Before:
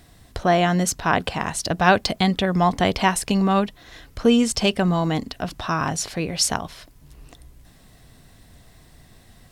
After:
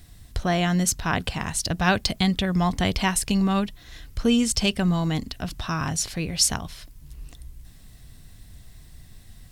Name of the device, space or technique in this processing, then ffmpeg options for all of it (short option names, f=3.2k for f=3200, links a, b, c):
smiley-face EQ: -af "lowshelf=f=93:g=8,equalizer=f=630:t=o:w=2.8:g=-8,highshelf=f=9.1k:g=3.5"